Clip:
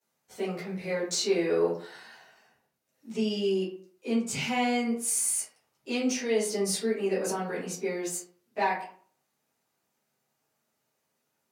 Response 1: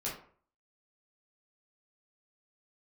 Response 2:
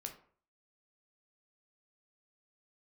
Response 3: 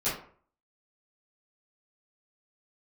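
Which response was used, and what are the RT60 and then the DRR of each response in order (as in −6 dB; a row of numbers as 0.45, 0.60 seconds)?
3; 0.50, 0.50, 0.50 seconds; −6.5, 3.5, −14.0 decibels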